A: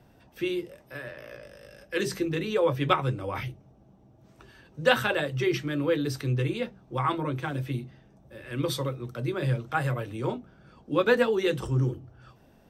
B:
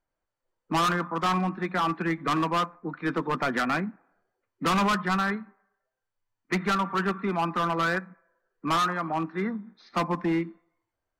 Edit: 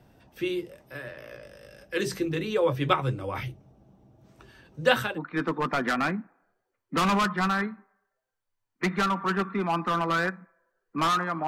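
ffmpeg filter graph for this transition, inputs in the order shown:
-filter_complex "[0:a]apad=whole_dur=11.47,atrim=end=11.47,atrim=end=5.19,asetpts=PTS-STARTPTS[s0];[1:a]atrim=start=2.7:end=9.16,asetpts=PTS-STARTPTS[s1];[s0][s1]acrossfade=d=0.18:c1=tri:c2=tri"

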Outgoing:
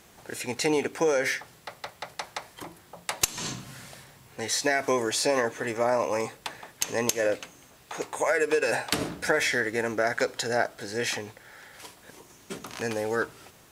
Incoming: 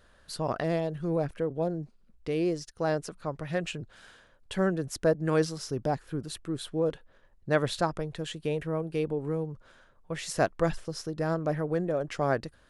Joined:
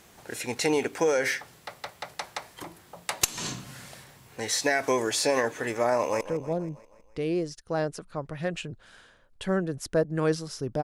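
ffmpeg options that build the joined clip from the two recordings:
-filter_complex "[0:a]apad=whole_dur=10.83,atrim=end=10.83,atrim=end=6.212[s0];[1:a]atrim=start=1.308:end=5.93[s1];[s0][s1]acrossfade=d=0.004:c1=hsin:c2=hsin,asplit=2[s2][s3];[s3]afade=t=in:st=5.95:d=0.01,afade=t=out:st=6.21:d=0.01,aecho=0:1:160|320|480|640|800|960:0.199526|0.119716|0.0718294|0.0430977|0.0258586|0.0155152[s4];[s2][s4]amix=inputs=2:normalize=0"

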